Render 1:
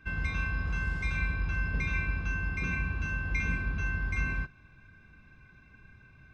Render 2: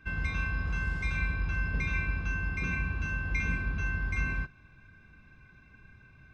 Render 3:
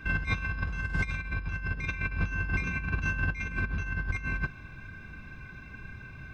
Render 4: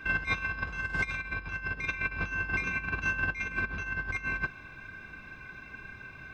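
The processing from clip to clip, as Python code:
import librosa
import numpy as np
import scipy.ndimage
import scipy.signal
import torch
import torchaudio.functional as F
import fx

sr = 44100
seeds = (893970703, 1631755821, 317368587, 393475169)

y1 = x
y2 = fx.over_compress(y1, sr, threshold_db=-35.0, ratio=-0.5)
y2 = F.gain(torch.from_numpy(y2), 5.5).numpy()
y3 = fx.bass_treble(y2, sr, bass_db=-11, treble_db=-2)
y3 = F.gain(torch.from_numpy(y3), 2.5).numpy()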